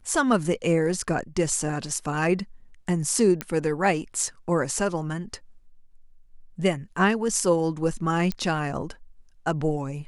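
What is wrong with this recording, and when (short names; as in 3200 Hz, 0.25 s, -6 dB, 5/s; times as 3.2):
3.41 pop -11 dBFS
8.32 pop -15 dBFS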